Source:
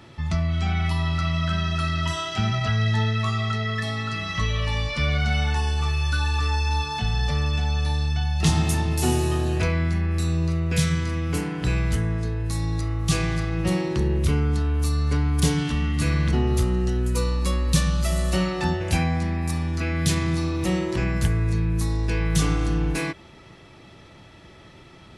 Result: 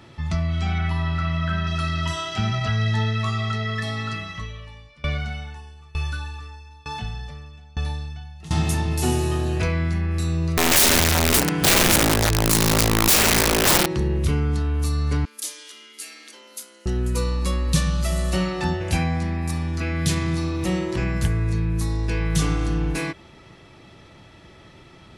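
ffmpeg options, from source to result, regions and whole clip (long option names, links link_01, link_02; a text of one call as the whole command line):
ffmpeg -i in.wav -filter_complex "[0:a]asettb=1/sr,asplit=3[link_01][link_02][link_03];[link_01]atrim=end=0.784[link_04];[link_02]atrim=start=0.78:end=1.67,asetpts=PTS-STARTPTS,afade=type=in:duration=0.004:curve=qsin,afade=type=out:start_time=0.886:duration=0.004:curve=qsin,acrossover=split=3100[link_05][link_06];[link_06]acompressor=threshold=-48dB:ratio=4:attack=1:release=60[link_07];[link_05][link_07]amix=inputs=2:normalize=0,equalizer=frequency=1600:width=5.4:gain=7[link_08];[link_03]atrim=start=1.666[link_09];[link_04][link_08]acrossfade=duration=0.004:curve1=hsin:curve2=qsin[link_10];[link_10][link_09]acrossfade=duration=0.004:curve1=qsin:curve2=hsin,asettb=1/sr,asplit=3[link_11][link_12][link_13];[link_11]atrim=end=4.134[link_14];[link_12]atrim=start=4.13:end=8.51,asetpts=PTS-STARTPTS,afade=type=in:duration=0.004:curve=qsin,afade=type=out:start_time=4.376:duration=0.004:curve=qsin,equalizer=frequency=4900:width_type=o:width=0.77:gain=-3.5,aeval=exprs='val(0)*pow(10,-26*if(lt(mod(1.1*n/s,1),2*abs(1.1)/1000),1-mod(1.1*n/s,1)/(2*abs(1.1)/1000),(mod(1.1*n/s,1)-2*abs(1.1)/1000)/(1-2*abs(1.1)/1000))/20)':channel_layout=same[link_15];[link_13]atrim=start=8.506[link_16];[link_14][link_15]acrossfade=duration=0.004:curve1=hsin:curve2=qsin[link_17];[link_17][link_16]acrossfade=duration=0.004:curve1=qsin:curve2=hsin,asettb=1/sr,asplit=3[link_18][link_19][link_20];[link_18]atrim=end=10.574[link_21];[link_19]atrim=start=10.57:end=13.86,asetpts=PTS-STARTPTS,afade=type=in:duration=0.004:curve=qsin,afade=type=out:start_time=3.286:duration=0.004:curve=qsin,acontrast=56,aeval=exprs='(mod(5.01*val(0)+1,2)-1)/5.01':channel_layout=same,highshelf=frequency=4100:gain=6[link_22];[link_20]atrim=start=13.856[link_23];[link_21][link_22]acrossfade=duration=0.004:curve1=hsin:curve2=qsin[link_24];[link_24][link_23]acrossfade=duration=0.004:curve1=qsin:curve2=hsin,asettb=1/sr,asplit=3[link_25][link_26][link_27];[link_25]atrim=end=15.254[link_28];[link_26]atrim=start=15.25:end=16.86,asetpts=PTS-STARTPTS,afade=type=in:duration=0.004:curve=qsin,afade=type=out:start_time=1.606:duration=0.004:curve=qsin,aderivative,afreqshift=150[link_29];[link_27]atrim=start=16.856[link_30];[link_28][link_29]acrossfade=duration=0.004:curve1=hsin:curve2=qsin[link_31];[link_31][link_30]acrossfade=duration=0.004:curve1=qsin:curve2=hsin" out.wav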